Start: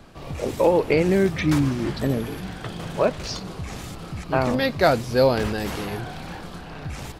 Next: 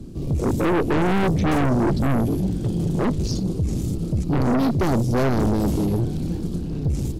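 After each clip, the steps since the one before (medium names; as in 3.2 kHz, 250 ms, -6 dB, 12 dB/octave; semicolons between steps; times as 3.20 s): FFT filter 350 Hz 0 dB, 660 Hz -22 dB, 1.7 kHz -28 dB, 6.9 kHz -10 dB; valve stage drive 23 dB, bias 0.65; in parallel at -6 dB: sine folder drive 11 dB, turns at -19.5 dBFS; on the sum: trim +5 dB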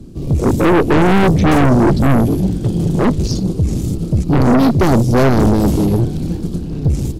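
upward expansion 1.5:1, over -32 dBFS; trim +9 dB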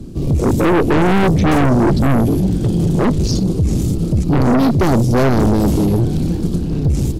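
peak limiter -13.5 dBFS, peak gain reduction 6 dB; trim +4 dB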